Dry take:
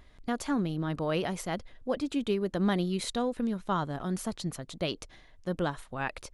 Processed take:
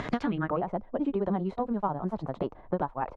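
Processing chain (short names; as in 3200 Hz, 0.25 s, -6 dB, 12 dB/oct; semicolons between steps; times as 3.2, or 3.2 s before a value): low-pass sweep 6700 Hz -> 900 Hz, 0.25–1.18; granular stretch 0.5×, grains 98 ms; three-band squash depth 100%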